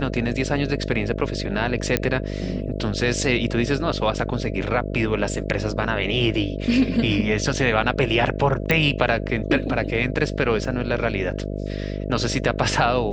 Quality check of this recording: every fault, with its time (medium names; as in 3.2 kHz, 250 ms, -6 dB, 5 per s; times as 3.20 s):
buzz 50 Hz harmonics 13 -28 dBFS
1.97 s: pop -4 dBFS
8.71 s: pop -6 dBFS
10.65 s: dropout 2 ms